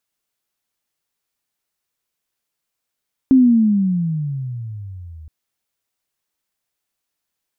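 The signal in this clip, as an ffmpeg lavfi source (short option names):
-f lavfi -i "aevalsrc='pow(10,(-6.5-28*t/1.97)/20)*sin(2*PI*269*1.97/(-22*log(2)/12)*(exp(-22*log(2)/12*t/1.97)-1))':d=1.97:s=44100"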